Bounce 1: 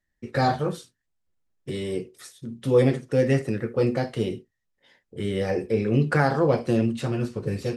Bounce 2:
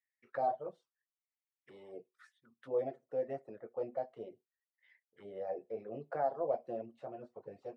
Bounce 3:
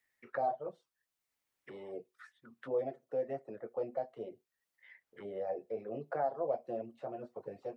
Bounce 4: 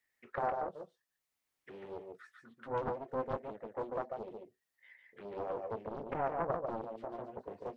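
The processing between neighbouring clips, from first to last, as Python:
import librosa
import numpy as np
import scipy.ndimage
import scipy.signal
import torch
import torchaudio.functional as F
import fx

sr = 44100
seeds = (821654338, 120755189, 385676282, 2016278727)

y1 = fx.auto_wah(x, sr, base_hz=660.0, top_hz=2200.0, q=5.7, full_db=-25.0, direction='down')
y1 = fx.dereverb_blind(y1, sr, rt60_s=0.51)
y1 = y1 * 10.0 ** (-3.0 / 20.0)
y2 = fx.band_squash(y1, sr, depth_pct=40)
y2 = y2 * 10.0 ** (1.5 / 20.0)
y3 = y2 + 10.0 ** (-4.0 / 20.0) * np.pad(y2, (int(144 * sr / 1000.0), 0))[:len(y2)]
y3 = fx.doppler_dist(y3, sr, depth_ms=0.96)
y3 = y3 * 10.0 ** (-1.5 / 20.0)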